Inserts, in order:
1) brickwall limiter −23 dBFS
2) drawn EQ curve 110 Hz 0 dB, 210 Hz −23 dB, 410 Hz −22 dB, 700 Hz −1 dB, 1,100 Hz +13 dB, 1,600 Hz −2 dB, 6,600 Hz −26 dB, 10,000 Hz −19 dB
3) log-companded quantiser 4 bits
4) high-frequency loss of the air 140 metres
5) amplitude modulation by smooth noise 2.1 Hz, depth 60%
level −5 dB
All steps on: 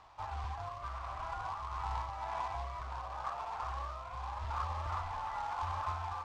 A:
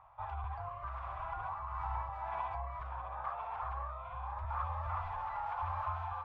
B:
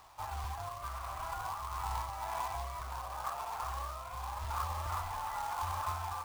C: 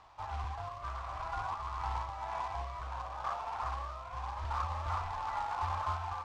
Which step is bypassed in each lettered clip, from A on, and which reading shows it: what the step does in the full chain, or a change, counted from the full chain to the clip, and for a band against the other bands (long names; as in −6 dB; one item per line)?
3, distortion level −13 dB
4, 8 kHz band +11.5 dB
1, change in crest factor +3.0 dB